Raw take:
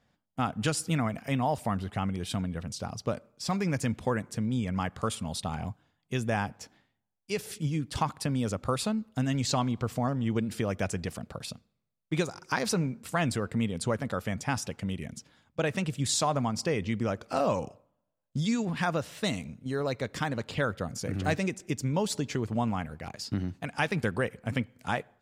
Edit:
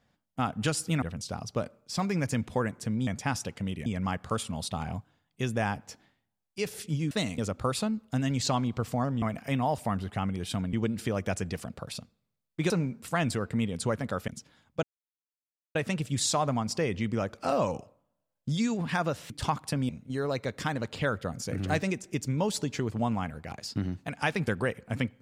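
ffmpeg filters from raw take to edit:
-filter_complex "[0:a]asplit=13[s0][s1][s2][s3][s4][s5][s6][s7][s8][s9][s10][s11][s12];[s0]atrim=end=1.022[s13];[s1]atrim=start=2.528:end=4.582[s14];[s2]atrim=start=14.288:end=15.082[s15];[s3]atrim=start=4.578:end=7.832[s16];[s4]atrim=start=19.178:end=19.452[s17];[s5]atrim=start=8.418:end=10.262[s18];[s6]atrim=start=1.018:end=2.532[s19];[s7]atrim=start=10.258:end=12.232[s20];[s8]atrim=start=12.708:end=14.292[s21];[s9]atrim=start=15.078:end=15.63,asetpts=PTS-STARTPTS,afade=t=out:st=0.548:d=0.004:c=hsin,apad=pad_dur=0.92[s22];[s10]atrim=start=15.63:end=19.182,asetpts=PTS-STARTPTS,afade=t=in:d=0.004:c=hsin[s23];[s11]atrim=start=7.828:end=8.422[s24];[s12]atrim=start=19.448[s25];[s13][s14]acrossfade=d=0.004:c1=hsin:c2=hsin[s26];[s26][s15]acrossfade=d=0.004:c1=hsin:c2=hsin[s27];[s27][s16]acrossfade=d=0.004:c1=hsin:c2=hsin[s28];[s28][s17]acrossfade=d=0.004:c1=hsin:c2=hsin[s29];[s29][s18]acrossfade=d=0.004:c1=hsin:c2=hsin[s30];[s30][s19]acrossfade=d=0.004:c1=hsin:c2=hsin[s31];[s31][s20]acrossfade=d=0.004:c1=hsin:c2=hsin[s32];[s32][s21]acrossfade=d=0.004:c1=hsin:c2=hsin[s33];[s22][s23]concat=n=2:v=0:a=1[s34];[s33][s34]acrossfade=d=0.004:c1=hsin:c2=hsin[s35];[s35][s24]acrossfade=d=0.004:c1=hsin:c2=hsin[s36];[s36][s25]acrossfade=d=0.004:c1=hsin:c2=hsin"

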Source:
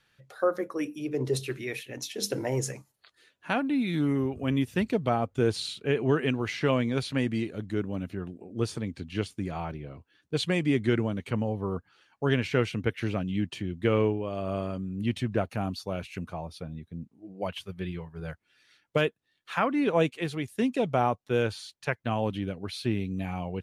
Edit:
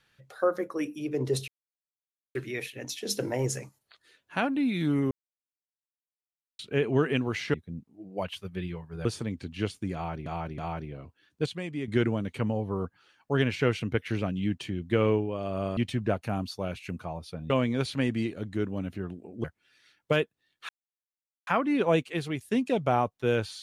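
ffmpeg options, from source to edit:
-filter_complex "[0:a]asplit=14[s0][s1][s2][s3][s4][s5][s6][s7][s8][s9][s10][s11][s12][s13];[s0]atrim=end=1.48,asetpts=PTS-STARTPTS,afade=t=out:st=1.476:d=0.004:c=hsin,apad=pad_dur=0.87[s14];[s1]atrim=start=1.48:end=4.24,asetpts=PTS-STARTPTS,afade=t=in:d=0.004:c=hsin,afade=t=out:st=2.756:d=0.004:c=hsin[s15];[s2]atrim=start=4.24:end=5.72,asetpts=PTS-STARTPTS,volume=0[s16];[s3]atrim=start=5.72:end=6.672,asetpts=PTS-STARTPTS,afade=t=in:d=0.004:c=hsin[s17];[s4]atrim=start=16.778:end=18.292[s18];[s5]atrim=start=8.608:end=9.822[s19];[s6]atrim=start=9.498:end=9.822[s20];[s7]atrim=start=9.498:end=10.382[s21];[s8]atrim=start=10.378:end=10.802,asetpts=PTS-STARTPTS,volume=0.355[s22];[s9]atrim=start=10.798:end=14.692[s23];[s10]atrim=start=15.048:end=16.782[s24];[s11]atrim=start=6.668:end=8.612[s25];[s12]atrim=start=18.288:end=19.54,asetpts=PTS-STARTPTS,afade=t=out:st=1.248:d=0.004:c=hsin,apad=pad_dur=0.78[s26];[s13]atrim=start=19.54,asetpts=PTS-STARTPTS,afade=t=in:d=0.004:c=hsin[s27];[s14][s15][s16][s17]concat=n=4:v=0:a=1[s28];[s28][s18]acrossfade=d=0.004:c1=hsin:c2=hsin[s29];[s29][s19]acrossfade=d=0.004:c1=hsin:c2=hsin[s30];[s30][s20]acrossfade=d=0.004:c1=hsin:c2=hsin[s31];[s31][s21]acrossfade=d=0.004:c1=hsin:c2=hsin[s32];[s32][s22]acrossfade=d=0.004:c1=hsin:c2=hsin[s33];[s33][s23]acrossfade=d=0.004:c1=hsin:c2=hsin[s34];[s34][s24]acrossfade=d=0.004:c1=hsin:c2=hsin[s35];[s35][s25]acrossfade=d=0.004:c1=hsin:c2=hsin[s36];[s26][s27]concat=n=2:v=0:a=1[s37];[s36][s37]acrossfade=d=0.004:c1=hsin:c2=hsin"

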